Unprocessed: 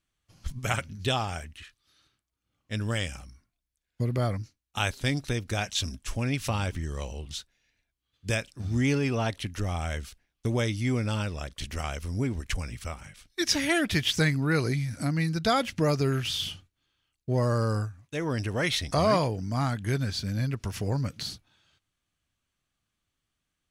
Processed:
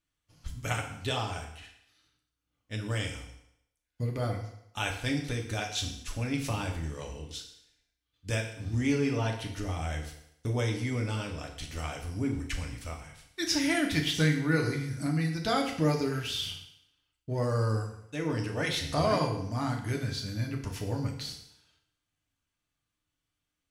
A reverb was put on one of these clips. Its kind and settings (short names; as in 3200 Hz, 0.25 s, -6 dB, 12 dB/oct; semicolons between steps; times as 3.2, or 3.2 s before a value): FDN reverb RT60 0.77 s, low-frequency decay 0.85×, high-frequency decay 0.95×, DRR 1 dB; gain -5.5 dB